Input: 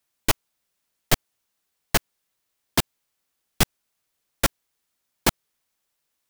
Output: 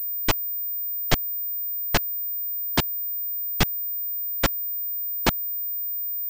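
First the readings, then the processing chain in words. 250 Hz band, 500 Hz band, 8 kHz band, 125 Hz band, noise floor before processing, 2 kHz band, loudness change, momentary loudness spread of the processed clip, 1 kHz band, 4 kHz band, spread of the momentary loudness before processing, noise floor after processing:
0.0 dB, 0.0 dB, -5.5 dB, 0.0 dB, -78 dBFS, 0.0 dB, +1.5 dB, 2 LU, 0.0 dB, -0.5 dB, 1 LU, -29 dBFS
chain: class-D stage that switches slowly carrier 15 kHz

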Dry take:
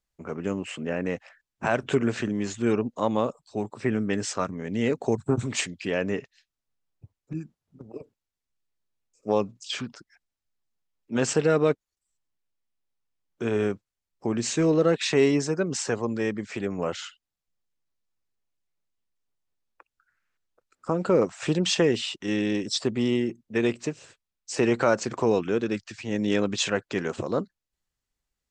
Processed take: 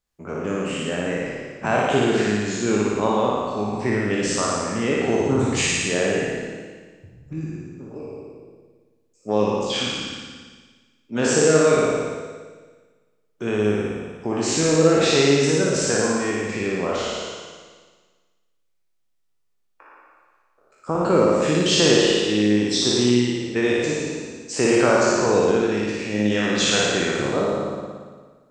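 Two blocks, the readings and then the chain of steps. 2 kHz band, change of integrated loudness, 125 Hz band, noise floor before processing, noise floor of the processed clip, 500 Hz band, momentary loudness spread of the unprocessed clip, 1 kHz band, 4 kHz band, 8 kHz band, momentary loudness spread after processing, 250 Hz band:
+8.0 dB, +6.0 dB, +5.0 dB, under -85 dBFS, -67 dBFS, +6.0 dB, 12 LU, +7.5 dB, +9.0 dB, +9.5 dB, 16 LU, +5.0 dB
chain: spectral sustain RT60 1.42 s; flutter echo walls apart 9.8 m, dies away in 1.2 s

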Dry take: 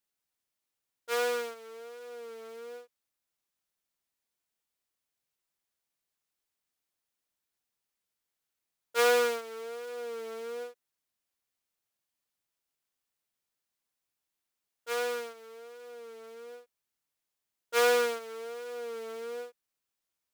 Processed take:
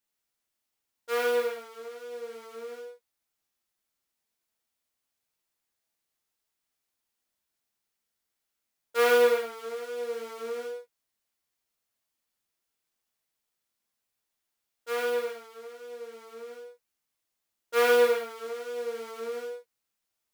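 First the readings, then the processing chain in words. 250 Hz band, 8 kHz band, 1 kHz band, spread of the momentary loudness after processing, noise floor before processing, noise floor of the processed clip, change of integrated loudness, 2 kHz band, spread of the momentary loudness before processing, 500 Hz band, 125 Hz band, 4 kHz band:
+4.5 dB, -2.5 dB, +2.0 dB, 22 LU, under -85 dBFS, -84 dBFS, +3.5 dB, +2.5 dB, 22 LU, +4.5 dB, no reading, 0.0 dB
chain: dynamic bell 6.6 kHz, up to -7 dB, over -50 dBFS, Q 0.77; gated-style reverb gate 150 ms flat, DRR 0 dB

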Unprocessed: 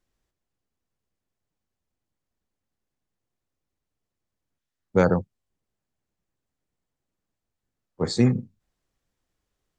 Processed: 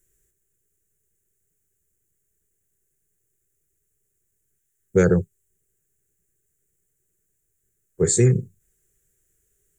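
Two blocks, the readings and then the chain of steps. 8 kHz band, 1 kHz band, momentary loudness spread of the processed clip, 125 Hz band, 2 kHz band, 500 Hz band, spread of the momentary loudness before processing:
no reading, -7.0 dB, 7 LU, +5.0 dB, +1.5 dB, +4.0 dB, 9 LU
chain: FFT filter 170 Hz 0 dB, 250 Hz -14 dB, 400 Hz +6 dB, 580 Hz -11 dB, 1 kHz -20 dB, 1.6 kHz -1 dB, 2.7 kHz -6 dB, 4.8 kHz -12 dB, 7.1 kHz +13 dB; in parallel at +2 dB: peak limiter -17 dBFS, peak gain reduction 8 dB

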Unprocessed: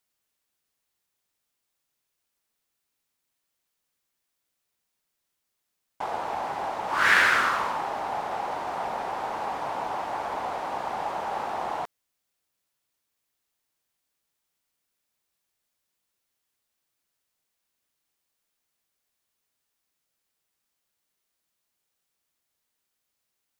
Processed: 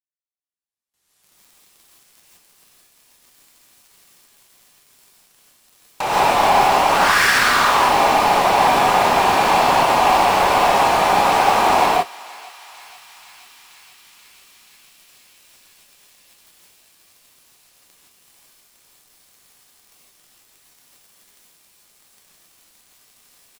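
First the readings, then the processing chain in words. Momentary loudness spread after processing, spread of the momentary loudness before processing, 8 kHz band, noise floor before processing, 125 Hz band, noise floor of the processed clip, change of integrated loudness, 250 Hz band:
3 LU, 12 LU, +18.0 dB, -81 dBFS, +16.5 dB, -64 dBFS, +12.5 dB, +16.0 dB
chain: recorder AGC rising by 24 dB/s; gate with hold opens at -48 dBFS; low-pass 11 kHz 12 dB/octave; treble shelf 7 kHz +6.5 dB; in parallel at -1 dB: compression, threshold -32 dBFS, peak gain reduction 19.5 dB; on the sum: waveshaping leveller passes 5; saturation -7.5 dBFS, distortion -14 dB; doubling 28 ms -13.5 dB; thinning echo 481 ms, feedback 84%, high-pass 1.2 kHz, level -20 dB; gated-style reverb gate 190 ms rising, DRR -6.5 dB; trim -12.5 dB

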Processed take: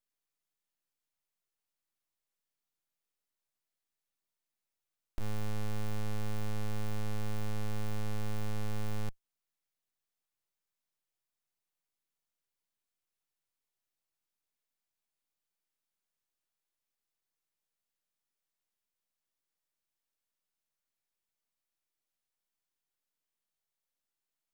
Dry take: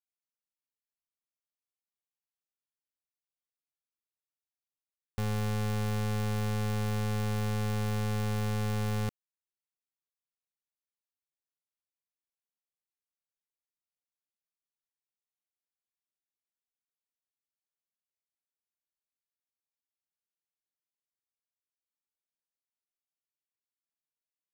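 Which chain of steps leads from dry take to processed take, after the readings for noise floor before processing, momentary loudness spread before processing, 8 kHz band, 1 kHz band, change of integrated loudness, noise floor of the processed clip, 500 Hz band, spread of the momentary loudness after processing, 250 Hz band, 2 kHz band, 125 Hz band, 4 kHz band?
under -85 dBFS, 2 LU, -6.5 dB, -7.5 dB, -7.5 dB, under -85 dBFS, -7.5 dB, 3 LU, -7.5 dB, -7.5 dB, -7.5 dB, -7.0 dB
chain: valve stage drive 35 dB, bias 0.35; full-wave rectifier; trim +7 dB

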